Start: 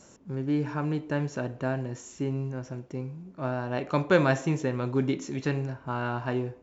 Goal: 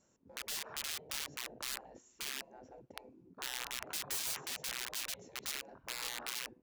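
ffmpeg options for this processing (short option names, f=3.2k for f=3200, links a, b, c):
-af "afwtdn=0.0141,aeval=exprs='(mod(16.8*val(0)+1,2)-1)/16.8':c=same,afftfilt=real='re*lt(hypot(re,im),0.0355)':imag='im*lt(hypot(re,im),0.0355)':win_size=1024:overlap=0.75,volume=-2.5dB"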